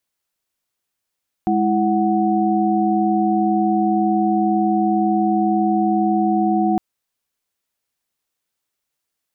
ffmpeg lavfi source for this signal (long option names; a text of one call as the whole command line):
ffmpeg -f lavfi -i "aevalsrc='0.112*(sin(2*PI*207.65*t)+sin(2*PI*329.63*t)+sin(2*PI*739.99*t))':duration=5.31:sample_rate=44100" out.wav